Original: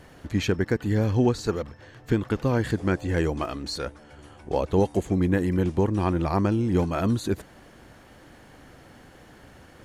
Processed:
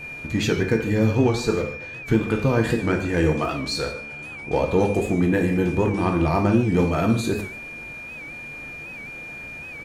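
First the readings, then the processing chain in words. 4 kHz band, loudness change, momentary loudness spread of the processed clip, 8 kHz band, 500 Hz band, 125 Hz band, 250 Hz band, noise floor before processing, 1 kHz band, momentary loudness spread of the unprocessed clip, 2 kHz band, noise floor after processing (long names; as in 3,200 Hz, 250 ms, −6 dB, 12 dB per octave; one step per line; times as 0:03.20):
+5.0 dB, +3.5 dB, 15 LU, +5.0 dB, +4.0 dB, +2.5 dB, +3.5 dB, −51 dBFS, +4.0 dB, 8 LU, +8.0 dB, −37 dBFS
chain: steady tone 2,400 Hz −41 dBFS
in parallel at −6.5 dB: soft clipping −24.5 dBFS, distortion −9 dB
on the sum: single-tap delay 149 ms −17.5 dB
reverb whose tail is shaped and stops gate 170 ms falling, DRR 2 dB
wow of a warped record 78 rpm, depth 100 cents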